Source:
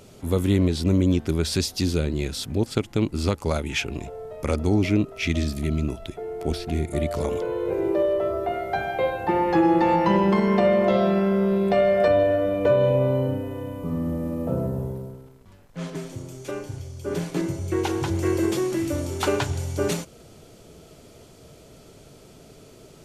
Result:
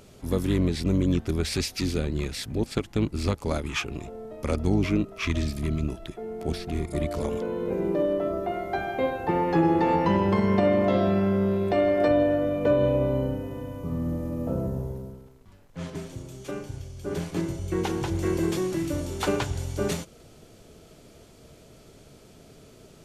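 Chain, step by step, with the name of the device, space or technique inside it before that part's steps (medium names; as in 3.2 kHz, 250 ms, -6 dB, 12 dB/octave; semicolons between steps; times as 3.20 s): octave pedal (harmony voices -12 st -7 dB); trim -3.5 dB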